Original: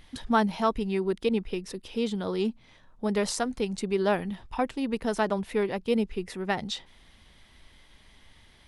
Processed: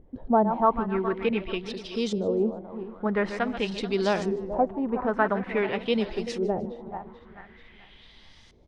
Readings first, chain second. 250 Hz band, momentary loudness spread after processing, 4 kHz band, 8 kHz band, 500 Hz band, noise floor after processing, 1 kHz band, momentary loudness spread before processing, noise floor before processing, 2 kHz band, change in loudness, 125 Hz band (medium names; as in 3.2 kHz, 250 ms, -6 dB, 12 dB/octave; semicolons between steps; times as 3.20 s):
+1.0 dB, 10 LU, 0.0 dB, no reading, +2.5 dB, -53 dBFS, +3.5 dB, 8 LU, -57 dBFS, +2.5 dB, +2.0 dB, +0.5 dB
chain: backward echo that repeats 218 ms, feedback 59%, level -10 dB; LFO low-pass saw up 0.47 Hz 430–6500 Hz; frequency-shifting echo 152 ms, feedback 37%, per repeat +120 Hz, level -22.5 dB